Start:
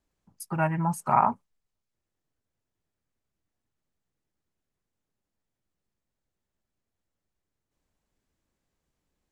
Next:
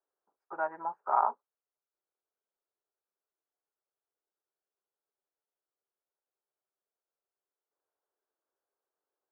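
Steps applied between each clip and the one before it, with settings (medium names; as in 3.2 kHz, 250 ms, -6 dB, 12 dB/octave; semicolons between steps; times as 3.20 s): Chebyshev band-pass 390–1500 Hz, order 3; trim -4.5 dB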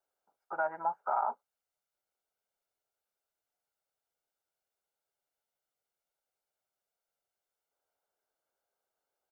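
comb 1.4 ms, depth 46%; peak limiter -23.5 dBFS, peak gain reduction 10.5 dB; trim +2.5 dB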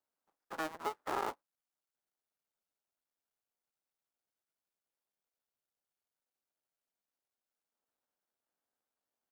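cycle switcher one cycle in 2, muted; trim -2.5 dB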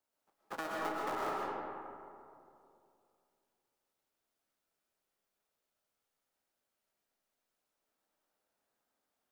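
compression, threshold -39 dBFS, peak gain reduction 9 dB; algorithmic reverb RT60 2.6 s, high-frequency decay 0.4×, pre-delay 85 ms, DRR -4 dB; trim +2.5 dB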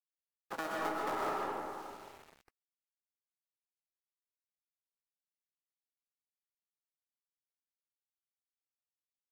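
small samples zeroed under -52.5 dBFS; trim +1.5 dB; Vorbis 96 kbps 44.1 kHz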